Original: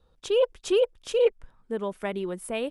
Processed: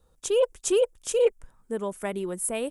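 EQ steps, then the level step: resonant high shelf 5.6 kHz +10.5 dB, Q 1.5; 0.0 dB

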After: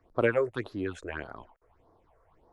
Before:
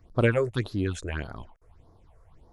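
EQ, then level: three-band isolator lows -13 dB, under 290 Hz, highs -12 dB, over 2.4 kHz; 0.0 dB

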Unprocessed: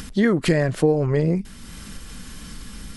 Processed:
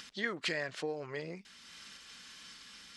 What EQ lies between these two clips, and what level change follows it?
distance through air 190 m; differentiator; +5.5 dB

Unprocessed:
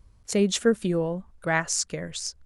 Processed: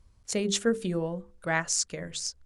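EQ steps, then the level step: distance through air 50 m; treble shelf 5.5 kHz +11 dB; hum notches 50/100/150/200/250/300/350/400/450/500 Hz; -3.5 dB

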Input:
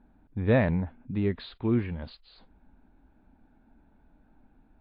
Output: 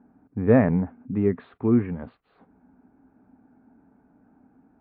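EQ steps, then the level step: cabinet simulation 100–2200 Hz, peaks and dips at 110 Hz +5 dB, 180 Hz +5 dB, 260 Hz +9 dB, 430 Hz +8 dB, 740 Hz +5 dB, 1.2 kHz +6 dB; 0.0 dB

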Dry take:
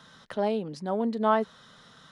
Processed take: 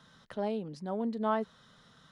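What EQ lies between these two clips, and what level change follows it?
bass shelf 200 Hz +6.5 dB; -7.5 dB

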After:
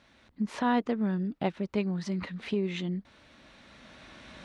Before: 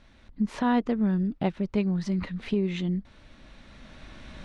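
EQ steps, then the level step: high-pass 57 Hz 12 dB/octave; bass shelf 190 Hz -9.5 dB; 0.0 dB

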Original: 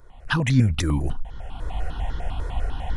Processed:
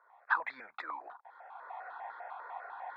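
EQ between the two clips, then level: boxcar filter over 15 samples; high-pass 870 Hz 24 dB/octave; distance through air 360 m; +3.5 dB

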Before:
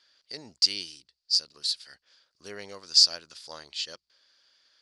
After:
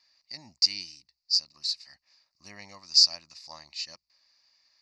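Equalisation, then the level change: static phaser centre 2.2 kHz, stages 8; 0.0 dB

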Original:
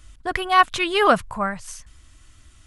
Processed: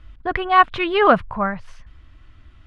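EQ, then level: distance through air 360 m; +4.0 dB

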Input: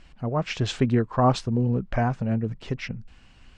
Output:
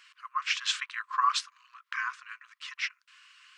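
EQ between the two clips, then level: brick-wall FIR high-pass 1 kHz; +3.5 dB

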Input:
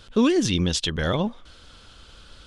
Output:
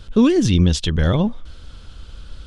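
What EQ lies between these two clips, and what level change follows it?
bass shelf 120 Hz +10 dB; bass shelf 390 Hz +5.5 dB; 0.0 dB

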